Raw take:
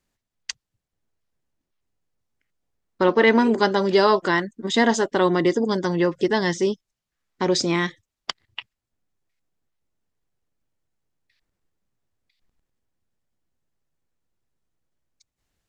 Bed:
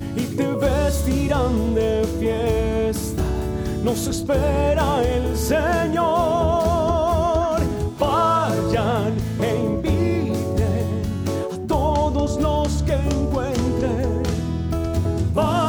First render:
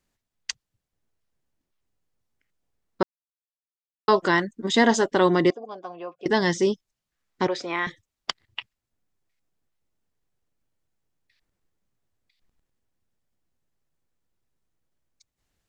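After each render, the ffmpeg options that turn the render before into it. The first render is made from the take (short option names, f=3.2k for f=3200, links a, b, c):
-filter_complex "[0:a]asettb=1/sr,asplit=3[a][b][c];[a]atrim=end=5.504[d];[b]atrim=start=5.5:end=6.26,asetpts=PTS-STARTPTS,afade=t=in:d=0.004:c=qsin,afade=t=out:st=0.756:d=0.004:c=qsin,asplit=3[e][f][g];[e]bandpass=f=730:t=q:w=8,volume=0dB[h];[f]bandpass=f=1.09k:t=q:w=8,volume=-6dB[i];[g]bandpass=f=2.44k:t=q:w=8,volume=-9dB[j];[h][i][j]amix=inputs=3:normalize=0[k];[c]atrim=start=6.256[l];[d][k]acrossfade=d=0.004:c1=hsin:c2=qsin[m];[m][l]acrossfade=d=0.004:c1=qsin:c2=hsin,asettb=1/sr,asplit=3[n][o][p];[n]atrim=end=7.474[q];[o]atrim=start=7.47:end=7.87,asetpts=PTS-STARTPTS,afade=t=in:d=0.004:c=qsin,afade=t=out:st=0.396:d=0.004:c=qsin,acrossover=split=470 3000:gain=0.112 1 0.126[r][s][t];[r][s][t]amix=inputs=3:normalize=0[u];[p]atrim=start=7.866[v];[q][u]acrossfade=d=0.004:c1=hsin:c2=qsin[w];[w][v]acrossfade=d=0.004:c1=qsin:c2=hsin,asplit=3[x][y][z];[x]atrim=end=3.03,asetpts=PTS-STARTPTS,afade=t=out:st=3.026:d=0.004:c=hsin[aa];[y]atrim=start=3.03:end=4.08,asetpts=PTS-STARTPTS,volume=0[ab];[z]atrim=start=4.08,asetpts=PTS-STARTPTS,afade=t=in:d=0.004:c=hsin[ac];[aa][ab][ac]concat=n=3:v=0:a=1"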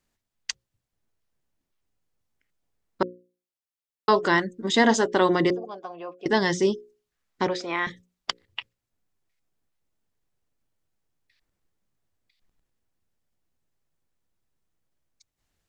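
-af "bandreject=f=60:t=h:w=6,bandreject=f=120:t=h:w=6,bandreject=f=180:t=h:w=6,bandreject=f=240:t=h:w=6,bandreject=f=300:t=h:w=6,bandreject=f=360:t=h:w=6,bandreject=f=420:t=h:w=6,bandreject=f=480:t=h:w=6,bandreject=f=540:t=h:w=6"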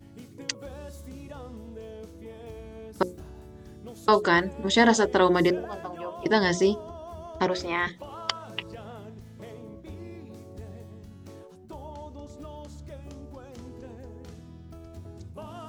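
-filter_complex "[1:a]volume=-22dB[a];[0:a][a]amix=inputs=2:normalize=0"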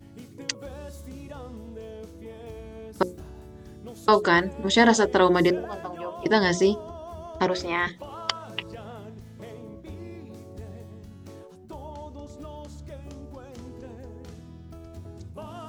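-af "volume=1.5dB"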